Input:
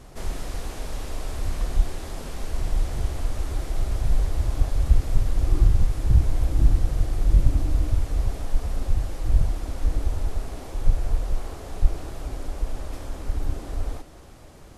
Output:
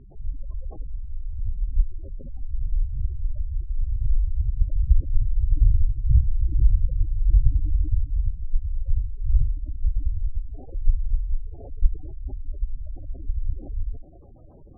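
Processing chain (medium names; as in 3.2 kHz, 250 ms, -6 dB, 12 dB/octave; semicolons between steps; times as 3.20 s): spectral gate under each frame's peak -15 dB strong; level-controlled noise filter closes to 1.6 kHz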